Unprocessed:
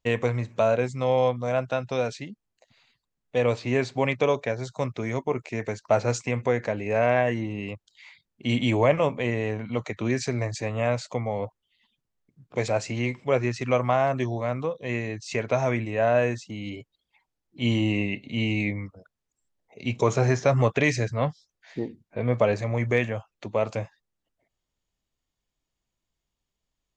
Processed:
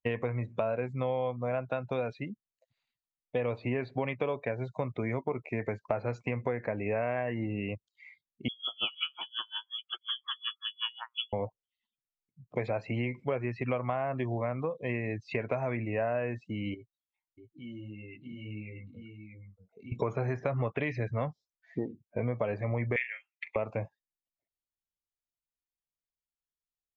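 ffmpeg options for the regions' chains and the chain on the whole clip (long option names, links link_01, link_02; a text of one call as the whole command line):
ffmpeg -i in.wav -filter_complex "[0:a]asettb=1/sr,asplit=3[link_01][link_02][link_03];[link_01]atrim=end=8.484[link_04];[link_02]atrim=start=8.48:end=11.33,asetpts=PTS-STARTPTS,afade=type=in:duration=0.004:curve=qsin,afade=type=out:start_time=2.846:duration=0.004:curve=qsin,acrossover=split=240|1700[link_05][link_06][link_07];[link_06]adelay=30[link_08];[link_07]adelay=190[link_09];[link_05][link_08][link_09]amix=inputs=3:normalize=0,atrim=end_sample=125685,lowpass=frequency=3000:width_type=q:width=0.5098,lowpass=frequency=3000:width_type=q:width=0.6013,lowpass=frequency=3000:width_type=q:width=0.9,lowpass=frequency=3000:width_type=q:width=2.563,afreqshift=-3500,aeval=exprs='val(0)*pow(10,-32*(0.5-0.5*cos(2*PI*5.5*n/s))/20)':channel_layout=same[link_10];[link_03]atrim=start=11.326[link_11];[link_04][link_10]acrossfade=duration=0.004:curve1=hsin:curve2=qsin[link_12];[link_12][link_11]acrossfade=duration=0.004:curve1=qsin:curve2=hsin,asettb=1/sr,asplit=3[link_13][link_14][link_15];[link_13]atrim=end=16.744[link_16];[link_14]atrim=start=16.74:end=19.92,asetpts=PTS-STARTPTS,afade=type=in:duration=0.004:curve=qsin,afade=type=out:start_time=3.176:duration=0.004:curve=qsin,flanger=delay=17.5:depth=3.6:speed=1.5,acompressor=threshold=-46dB:ratio=3:attack=3.2:release=140:knee=1:detection=peak,aecho=1:1:635:0.668,atrim=end_sample=140238[link_17];[link_15]atrim=start=19.916[link_18];[link_16][link_17]acrossfade=duration=0.004:curve1=hsin:curve2=qsin[link_19];[link_19][link_18]acrossfade=duration=0.004:curve1=qsin:curve2=hsin,asettb=1/sr,asplit=3[link_20][link_21][link_22];[link_20]atrim=end=22.964[link_23];[link_21]atrim=start=22.96:end=23.56,asetpts=PTS-STARTPTS,afade=type=in:duration=0.004:curve=qsin,afade=type=out:start_time=0.596:duration=0.004:curve=qsin,highpass=frequency=2100:width_type=q:width=5.2,asplit=2[link_24][link_25];[link_25]adelay=41,volume=-11dB[link_26];[link_24][link_26]amix=inputs=2:normalize=0,atrim=end_sample=26460[link_27];[link_22]atrim=start=23.556[link_28];[link_23][link_27]acrossfade=duration=0.004:curve1=hsin:curve2=qsin[link_29];[link_29][link_28]acrossfade=duration=0.004:curve1=qsin:curve2=hsin,acrossover=split=3600[link_30][link_31];[link_31]acompressor=threshold=-54dB:ratio=4:attack=1:release=60[link_32];[link_30][link_32]amix=inputs=2:normalize=0,afftdn=noise_reduction=22:noise_floor=-43,acompressor=threshold=-28dB:ratio=6" out.wav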